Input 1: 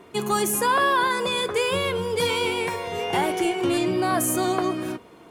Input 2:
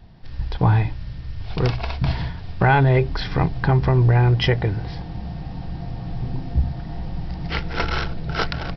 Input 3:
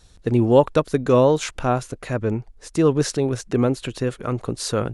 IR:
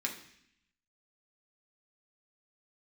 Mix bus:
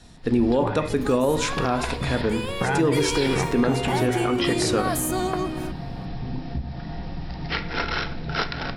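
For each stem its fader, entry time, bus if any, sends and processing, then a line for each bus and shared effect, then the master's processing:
2.15 s -12 dB -> 2.87 s -2.5 dB, 0.75 s, no send, dry
-1.5 dB, 0.00 s, send -5 dB, compressor, threshold -21 dBFS, peak gain reduction 9 dB
-2.5 dB, 0.00 s, send -5 dB, dry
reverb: on, RT60 0.70 s, pre-delay 3 ms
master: limiter -12 dBFS, peak gain reduction 9.5 dB

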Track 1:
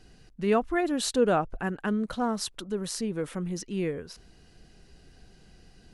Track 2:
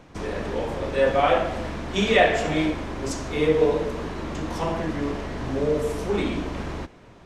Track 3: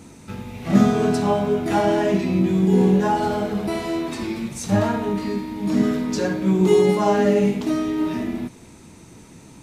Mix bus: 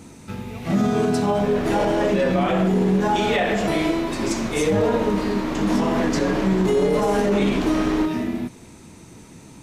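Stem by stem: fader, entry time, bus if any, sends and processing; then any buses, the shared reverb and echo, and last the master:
-19.5 dB, 0.00 s, no send, dry
-3.5 dB, 1.20 s, no send, bell 86 Hz -14.5 dB 0.82 oct; AGC gain up to 11.5 dB
+1.0 dB, 0.00 s, no send, dry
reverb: off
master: limiter -11.5 dBFS, peak gain reduction 9 dB

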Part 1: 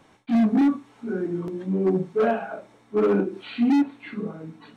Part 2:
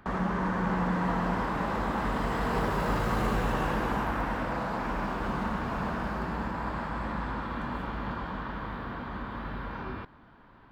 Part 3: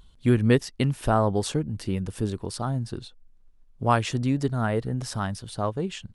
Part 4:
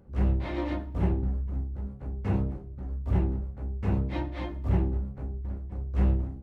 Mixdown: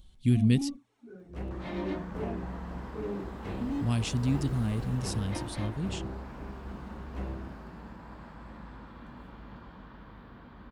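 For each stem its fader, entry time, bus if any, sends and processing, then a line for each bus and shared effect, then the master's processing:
-13.5 dB, 0.00 s, no send, envelope flanger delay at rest 5.6 ms, full sweep at -16 dBFS
-11.0 dB, 1.45 s, no send, dry
-1.5 dB, 0.00 s, muted 0.77–3.58, no send, band shelf 790 Hz -14 dB 2.6 oct
+1.0 dB, 1.20 s, no send, compressor 2.5:1, threshold -26 dBFS, peak gain reduction 5.5 dB; tone controls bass -12 dB, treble -2 dB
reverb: off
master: bell 1200 Hz -5.5 dB 2.3 oct

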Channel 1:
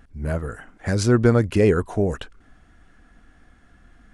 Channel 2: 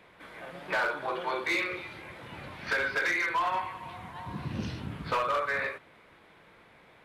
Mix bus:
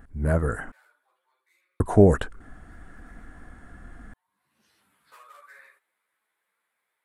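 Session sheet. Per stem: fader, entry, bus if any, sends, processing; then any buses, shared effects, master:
+1.5 dB, 0.00 s, muted 0.72–1.8, no send, dry
-9.0 dB, 0.00 s, no send, differentiator; ensemble effect; auto duck -19 dB, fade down 0.95 s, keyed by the first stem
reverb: off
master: band shelf 3900 Hz -9 dB; AGC gain up to 6 dB

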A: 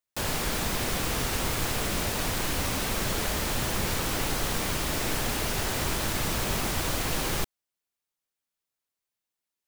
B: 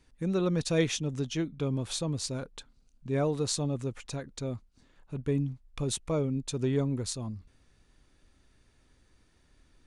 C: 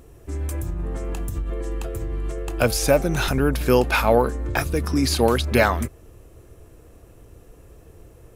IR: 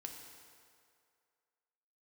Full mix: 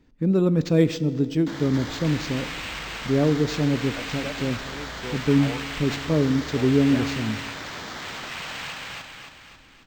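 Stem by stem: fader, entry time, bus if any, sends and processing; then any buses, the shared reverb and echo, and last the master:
-5.5 dB, 1.30 s, no send, echo send -7.5 dB, HPF 120 Hz; bell 2500 Hz +14 dB 2.4 oct; LFO notch square 0.67 Hz 370–2600 Hz; auto duck -8 dB, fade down 1.90 s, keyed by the second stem
-2.0 dB, 0.00 s, send -3.5 dB, no echo send, bell 240 Hz +10.5 dB 2 oct
-18.0 dB, 1.35 s, no send, no echo send, dry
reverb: on, RT60 2.3 s, pre-delay 3 ms
echo: feedback echo 0.273 s, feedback 51%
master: decimation joined by straight lines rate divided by 4×

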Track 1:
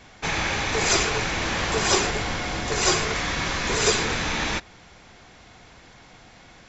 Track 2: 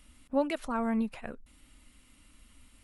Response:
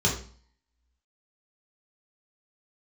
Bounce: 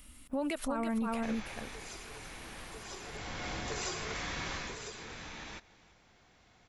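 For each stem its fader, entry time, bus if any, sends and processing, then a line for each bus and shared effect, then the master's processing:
4.55 s -7.5 dB -> 4.8 s -15 dB, 1.00 s, no send, echo send -20.5 dB, compressor, threshold -27 dBFS, peak gain reduction 11.5 dB; auto duck -10 dB, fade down 1.90 s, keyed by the second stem
+2.5 dB, 0.00 s, no send, echo send -6 dB, high shelf 9700 Hz +10.5 dB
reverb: off
echo: echo 0.333 s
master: limiter -26 dBFS, peak gain reduction 11.5 dB

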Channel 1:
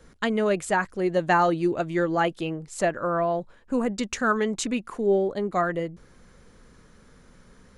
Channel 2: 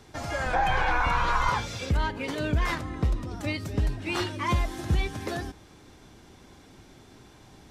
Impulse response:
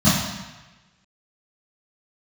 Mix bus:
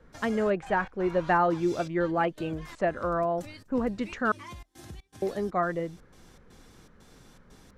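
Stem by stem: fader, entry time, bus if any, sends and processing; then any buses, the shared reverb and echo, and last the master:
-3.0 dB, 0.00 s, muted 4.32–5.22, no send, LPF 1800 Hz 12 dB/oct
-7.0 dB, 0.00 s, no send, compressor 3:1, threshold -39 dBFS, peak gain reduction 14 dB; step gate ".xxx.xx.xxx" 120 bpm -24 dB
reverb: off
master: high shelf 4000 Hz +9 dB

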